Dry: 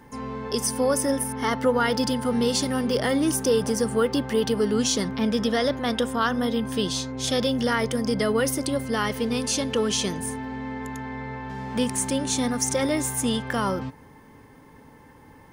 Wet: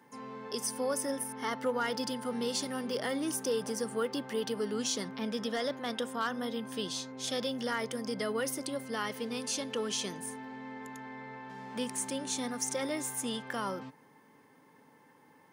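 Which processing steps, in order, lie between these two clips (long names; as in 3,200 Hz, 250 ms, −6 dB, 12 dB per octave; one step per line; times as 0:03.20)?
high-pass filter 140 Hz 24 dB per octave
low-shelf EQ 320 Hz −5.5 dB
gain into a clipping stage and back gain 14.5 dB
level −8.5 dB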